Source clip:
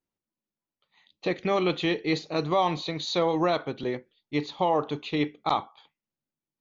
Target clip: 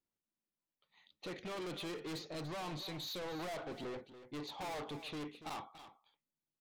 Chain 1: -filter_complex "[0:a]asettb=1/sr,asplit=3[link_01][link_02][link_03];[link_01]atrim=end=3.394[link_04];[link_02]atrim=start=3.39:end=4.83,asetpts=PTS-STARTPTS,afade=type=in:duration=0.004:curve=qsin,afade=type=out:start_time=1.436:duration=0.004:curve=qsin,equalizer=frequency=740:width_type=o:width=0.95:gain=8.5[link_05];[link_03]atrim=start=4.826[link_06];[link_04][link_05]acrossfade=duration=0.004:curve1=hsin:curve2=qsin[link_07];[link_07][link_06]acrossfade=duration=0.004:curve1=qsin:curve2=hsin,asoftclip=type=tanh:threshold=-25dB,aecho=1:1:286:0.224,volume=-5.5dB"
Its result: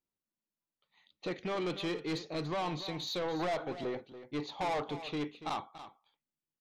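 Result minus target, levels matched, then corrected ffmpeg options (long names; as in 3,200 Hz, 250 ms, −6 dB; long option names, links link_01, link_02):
soft clipping: distortion −4 dB
-filter_complex "[0:a]asettb=1/sr,asplit=3[link_01][link_02][link_03];[link_01]atrim=end=3.394[link_04];[link_02]atrim=start=3.39:end=4.83,asetpts=PTS-STARTPTS,afade=type=in:duration=0.004:curve=qsin,afade=type=out:start_time=1.436:duration=0.004:curve=qsin,equalizer=frequency=740:width_type=o:width=0.95:gain=8.5[link_05];[link_03]atrim=start=4.826[link_06];[link_04][link_05]acrossfade=duration=0.004:curve1=hsin:curve2=qsin[link_07];[link_07][link_06]acrossfade=duration=0.004:curve1=qsin:curve2=hsin,asoftclip=type=tanh:threshold=-35.5dB,aecho=1:1:286:0.224,volume=-5.5dB"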